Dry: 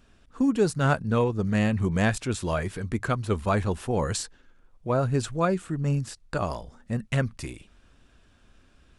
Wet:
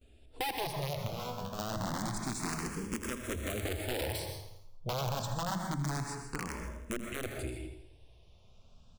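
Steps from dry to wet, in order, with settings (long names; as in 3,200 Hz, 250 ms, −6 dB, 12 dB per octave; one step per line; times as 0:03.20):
0:02.24–0:04.08: one scale factor per block 3 bits
brickwall limiter −19.5 dBFS, peak gain reduction 9.5 dB
low-shelf EQ 110 Hz +4 dB
noise gate with hold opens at −51 dBFS
parametric band 1,600 Hz −14 dB 0.66 octaves
mains-hum notches 50/100/150/200 Hz
wrap-around overflow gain 21.5 dB
0:01.07–0:01.59: tuned comb filter 82 Hz, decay 0.3 s, harmonics all, mix 90%
repeating echo 82 ms, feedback 53%, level −13 dB
dense smooth reverb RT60 0.6 s, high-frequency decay 0.45×, pre-delay 110 ms, DRR 6 dB
downward compressor 3 to 1, threshold −31 dBFS, peak gain reduction 7 dB
frequency shifter mixed with the dry sound +0.27 Hz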